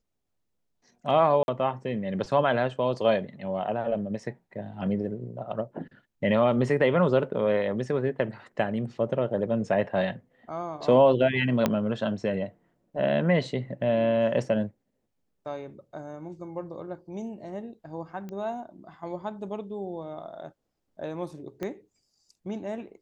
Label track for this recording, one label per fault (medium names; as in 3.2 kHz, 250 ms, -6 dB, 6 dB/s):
1.430000	1.480000	dropout 51 ms
11.660000	11.660000	pop -9 dBFS
18.290000	18.290000	pop -27 dBFS
21.630000	21.630000	pop -20 dBFS